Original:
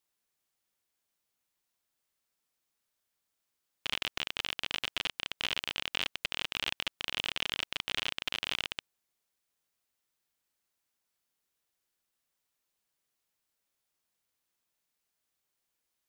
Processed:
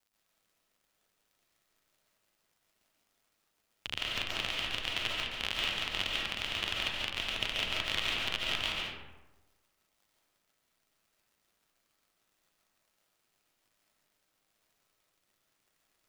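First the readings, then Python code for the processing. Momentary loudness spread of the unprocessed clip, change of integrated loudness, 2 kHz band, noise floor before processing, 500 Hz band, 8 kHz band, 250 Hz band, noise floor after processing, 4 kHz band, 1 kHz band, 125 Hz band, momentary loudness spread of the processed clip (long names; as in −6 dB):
3 LU, +1.5 dB, +1.5 dB, −84 dBFS, +3.0 dB, 0.0 dB, +3.0 dB, −79 dBFS, +1.0 dB, +2.0 dB, +6.0 dB, 4 LU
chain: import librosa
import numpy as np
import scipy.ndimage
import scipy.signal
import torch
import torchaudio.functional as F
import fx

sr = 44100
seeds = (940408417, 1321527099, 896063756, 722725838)

y = fx.octave_divider(x, sr, octaves=1, level_db=3.0)
y = fx.dmg_crackle(y, sr, seeds[0], per_s=270.0, level_db=-60.0)
y = y * np.sin(2.0 * np.pi * 52.0 * np.arange(len(y)) / sr)
y = fx.rev_freeverb(y, sr, rt60_s=1.1, hf_ratio=0.5, predelay_ms=100, drr_db=-3.5)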